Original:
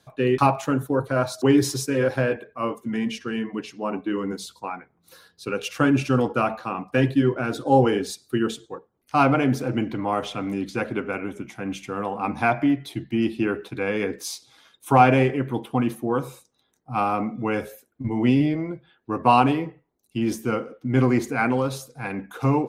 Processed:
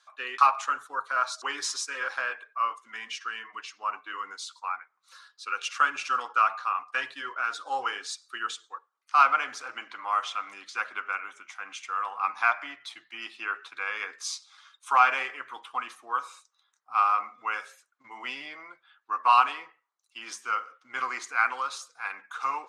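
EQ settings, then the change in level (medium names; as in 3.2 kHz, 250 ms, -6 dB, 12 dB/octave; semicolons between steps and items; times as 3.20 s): resonant high-pass 1.2 kHz, resonance Q 4; low-pass 7.9 kHz 24 dB/octave; treble shelf 2.6 kHz +9 dB; -8.0 dB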